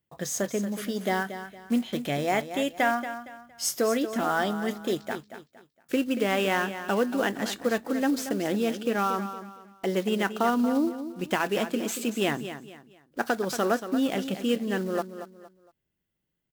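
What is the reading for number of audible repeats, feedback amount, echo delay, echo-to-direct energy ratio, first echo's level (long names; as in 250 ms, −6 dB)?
3, 32%, 231 ms, −10.5 dB, −11.0 dB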